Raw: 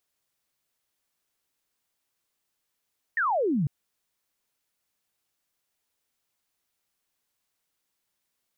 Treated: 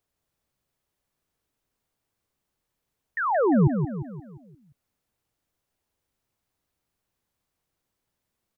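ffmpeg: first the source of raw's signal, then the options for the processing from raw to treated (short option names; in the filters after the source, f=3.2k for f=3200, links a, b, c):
-f lavfi -i "aevalsrc='0.0794*clip(t/0.002,0,1)*clip((0.5-t)/0.002,0,1)*sin(2*PI*1900*0.5/log(130/1900)*(exp(log(130/1900)*t/0.5)-1))':d=0.5:s=44100"
-filter_complex "[0:a]tiltshelf=f=1.2k:g=5.5,aecho=1:1:175|350|525|700|875|1050:0.447|0.21|0.0987|0.0464|0.0218|0.0102,acrossover=split=140[a][b];[a]acontrast=55[c];[c][b]amix=inputs=2:normalize=0"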